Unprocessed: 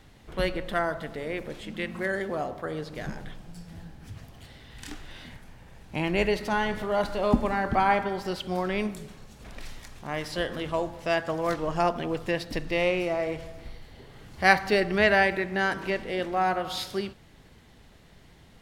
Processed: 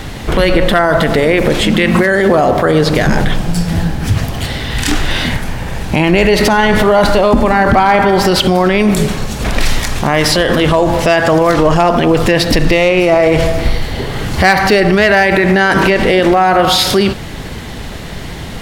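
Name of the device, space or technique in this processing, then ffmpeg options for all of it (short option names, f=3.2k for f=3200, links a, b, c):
loud club master: -af "acompressor=threshold=-27dB:ratio=2.5,asoftclip=type=hard:threshold=-20.5dB,alimiter=level_in=30dB:limit=-1dB:release=50:level=0:latency=1,volume=-1dB"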